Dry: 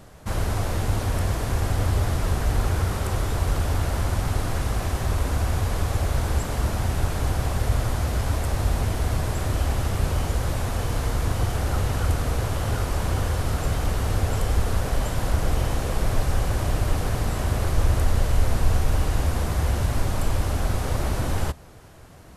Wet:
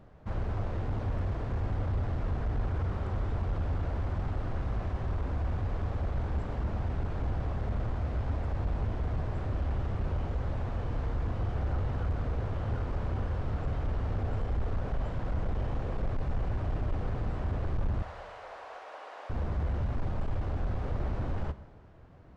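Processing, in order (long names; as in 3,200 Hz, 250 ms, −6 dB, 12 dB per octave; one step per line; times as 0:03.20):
0:18.02–0:19.30: high-pass filter 580 Hz 24 dB per octave
hard clipping −19 dBFS, distortion −13 dB
head-to-tape spacing loss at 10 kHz 34 dB
four-comb reverb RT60 1.3 s, combs from 30 ms, DRR 14 dB
level −6.5 dB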